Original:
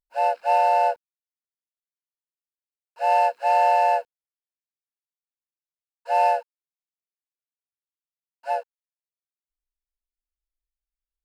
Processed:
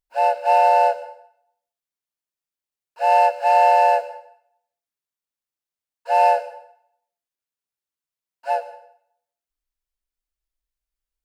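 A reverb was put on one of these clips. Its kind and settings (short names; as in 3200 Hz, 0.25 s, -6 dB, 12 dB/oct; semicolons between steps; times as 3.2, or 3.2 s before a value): plate-style reverb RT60 0.68 s, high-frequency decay 0.9×, pre-delay 90 ms, DRR 14 dB; gain +3.5 dB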